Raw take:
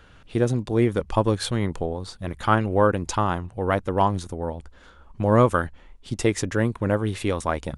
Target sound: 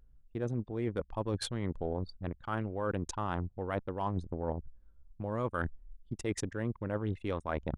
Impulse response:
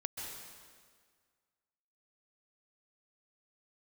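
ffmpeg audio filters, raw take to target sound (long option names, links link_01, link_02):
-af "anlmdn=63.1,areverse,acompressor=threshold=-30dB:ratio=16,areverse"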